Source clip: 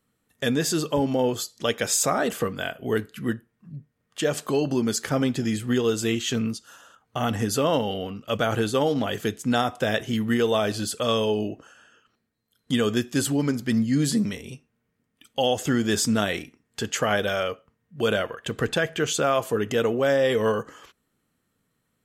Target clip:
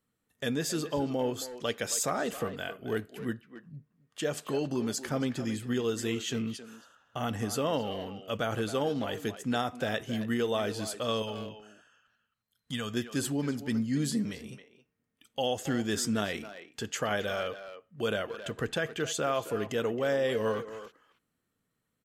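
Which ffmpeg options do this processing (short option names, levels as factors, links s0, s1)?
-filter_complex "[0:a]asettb=1/sr,asplit=3[s0][s1][s2];[s0]atrim=end=11.224[s3];[s1]atrim=start=11.22:end=12.94,asetpts=PTS-STARTPTS,afade=t=in:d=0.004:c=qsin,afade=t=out:st=1.716:d=0.004:c=qsin,equalizer=f=360:t=o:w=1.1:g=-13[s4];[s2]atrim=start=12.936[s5];[s3][s4]acrossfade=d=0.004:c1=hsin:c2=qsin[s6];[s6][s5]acrossfade=d=0.004:c1=qsin:c2=hsin,asplit=2[s7][s8];[s8]adelay=270,highpass=300,lowpass=3400,asoftclip=type=hard:threshold=0.0944,volume=0.316[s9];[s7][s9]amix=inputs=2:normalize=0,volume=0.422"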